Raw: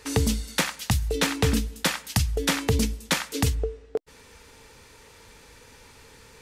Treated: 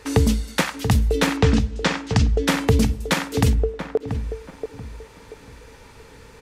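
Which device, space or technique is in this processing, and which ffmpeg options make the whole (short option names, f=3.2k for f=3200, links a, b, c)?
behind a face mask: -filter_complex "[0:a]asettb=1/sr,asplit=3[a][b][c];[a]atrim=end=1.374[d];[b]atrim=start=1.37:end=2.48,asetpts=PTS-STARTPTS,afade=t=in:d=0.004:c=qsin,afade=t=out:st=1.106:d=0.004:c=qsin,lowpass=f=7k:w=0.5412,lowpass=f=7k:w=1.3066[e];[c]atrim=start=2.476[f];[d][e]acrossfade=d=0.004:c1=hsin:c2=qsin[g];[g][f]acrossfade=d=0.004:c1=qsin:c2=hsin,highshelf=f=2.5k:g=-8,asplit=2[h][i];[i]adelay=683,lowpass=f=1.2k:p=1,volume=-8dB,asplit=2[j][k];[k]adelay=683,lowpass=f=1.2k:p=1,volume=0.32,asplit=2[l][m];[m]adelay=683,lowpass=f=1.2k:p=1,volume=0.32,asplit=2[n][o];[o]adelay=683,lowpass=f=1.2k:p=1,volume=0.32[p];[h][j][l][n][p]amix=inputs=5:normalize=0,volume=6dB"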